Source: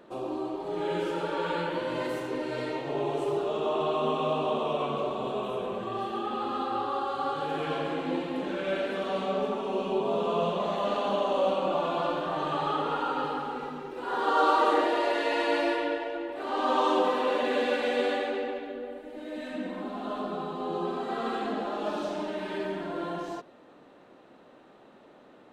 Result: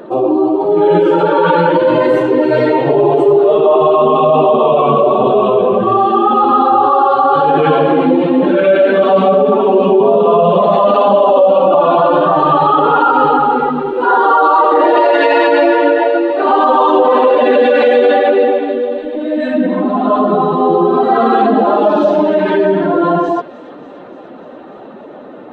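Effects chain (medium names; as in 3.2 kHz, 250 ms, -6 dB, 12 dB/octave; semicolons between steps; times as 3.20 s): spectral contrast enhancement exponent 1.6; peaking EQ 310 Hz -3 dB 2 oct; on a send: feedback echo behind a high-pass 294 ms, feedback 75%, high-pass 2.4 kHz, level -16.5 dB; on the sum: loudness maximiser +25 dB; trim -1 dB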